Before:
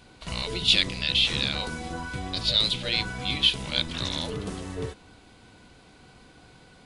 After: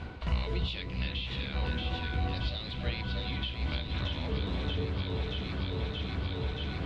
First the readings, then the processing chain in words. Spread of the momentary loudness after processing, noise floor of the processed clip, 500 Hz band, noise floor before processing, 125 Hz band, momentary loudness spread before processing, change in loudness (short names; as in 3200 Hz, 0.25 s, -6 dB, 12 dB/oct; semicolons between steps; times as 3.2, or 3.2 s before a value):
2 LU, -39 dBFS, -2.5 dB, -54 dBFS, +3.5 dB, 14 LU, -9.0 dB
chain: on a send: echo with dull and thin repeats by turns 0.314 s, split 1600 Hz, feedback 81%, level -5 dB; on the sum: reverse; upward compressor, threshold -29 dBFS; reverse; flange 1 Hz, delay 8.6 ms, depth 8.8 ms, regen -73%; compressor 6:1, threshold -37 dBFS, peak gain reduction 16 dB; LPF 2600 Hz 12 dB/oct; bell 69 Hz +12 dB 1.1 oct; gain +6 dB